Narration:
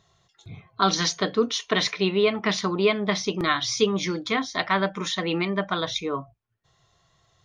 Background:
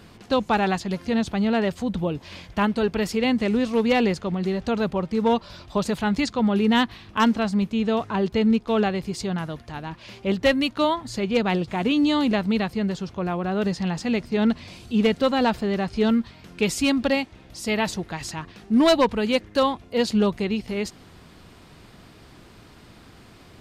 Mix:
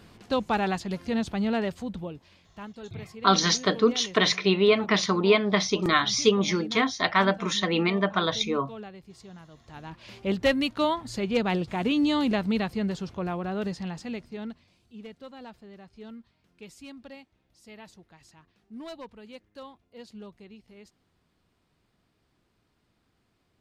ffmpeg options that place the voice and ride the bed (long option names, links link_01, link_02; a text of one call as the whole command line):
ffmpeg -i stem1.wav -i stem2.wav -filter_complex "[0:a]adelay=2450,volume=1dB[link_01];[1:a]volume=11.5dB,afade=type=out:start_time=1.53:duration=0.84:silence=0.177828,afade=type=in:start_time=9.51:duration=0.64:silence=0.158489,afade=type=out:start_time=13.1:duration=1.57:silence=0.1[link_02];[link_01][link_02]amix=inputs=2:normalize=0" out.wav